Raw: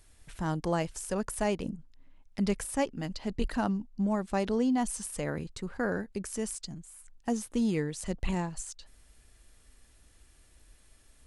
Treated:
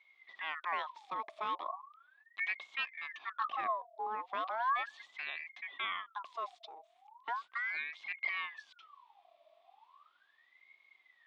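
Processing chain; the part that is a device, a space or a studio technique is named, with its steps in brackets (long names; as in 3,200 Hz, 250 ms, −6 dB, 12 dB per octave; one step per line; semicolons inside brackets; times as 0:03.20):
voice changer toy (ring modulator whose carrier an LFO sweeps 1,400 Hz, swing 55%, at 0.37 Hz; loudspeaker in its box 450–3,700 Hz, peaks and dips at 480 Hz −7 dB, 710 Hz +4 dB, 1,100 Hz +10 dB, 1,500 Hz −7 dB, 2,200 Hz +3 dB, 3,500 Hz +9 dB)
level −7 dB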